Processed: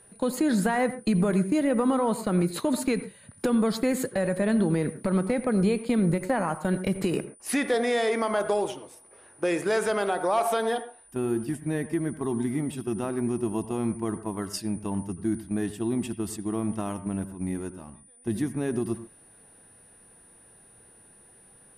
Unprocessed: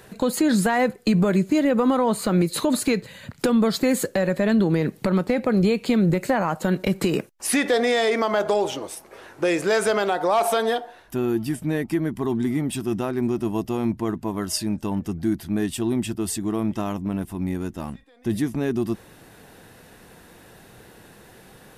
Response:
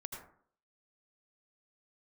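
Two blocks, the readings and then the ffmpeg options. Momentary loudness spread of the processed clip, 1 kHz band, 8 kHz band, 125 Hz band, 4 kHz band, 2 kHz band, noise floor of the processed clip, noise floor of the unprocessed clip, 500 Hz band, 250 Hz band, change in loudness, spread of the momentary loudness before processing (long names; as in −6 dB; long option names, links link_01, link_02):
8 LU, −4.5 dB, −5.0 dB, −4.0 dB, −8.0 dB, −5.0 dB, −55 dBFS, −50 dBFS, −4.0 dB, −4.0 dB, −4.5 dB, 8 LU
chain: -filter_complex "[0:a]aeval=exprs='val(0)+0.0126*sin(2*PI*9400*n/s)':channel_layout=same,agate=range=-8dB:threshold=-27dB:ratio=16:detection=peak,asplit=2[link_01][link_02];[1:a]atrim=start_sample=2205,afade=type=out:start_time=0.19:duration=0.01,atrim=end_sample=8820,lowpass=2900[link_03];[link_02][link_03]afir=irnorm=-1:irlink=0,volume=-4dB[link_04];[link_01][link_04]amix=inputs=2:normalize=0,volume=-7dB"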